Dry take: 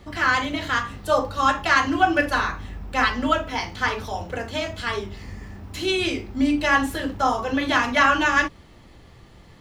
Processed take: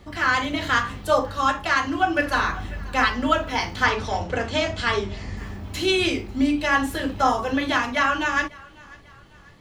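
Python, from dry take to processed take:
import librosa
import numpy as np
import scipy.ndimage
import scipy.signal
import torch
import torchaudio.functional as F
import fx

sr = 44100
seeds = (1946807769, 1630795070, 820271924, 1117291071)

y = fx.lowpass(x, sr, hz=8100.0, slope=24, at=(3.84, 5.37))
y = fx.echo_thinned(y, sr, ms=545, feedback_pct=48, hz=420.0, wet_db=-23.5)
y = fx.rider(y, sr, range_db=4, speed_s=0.5)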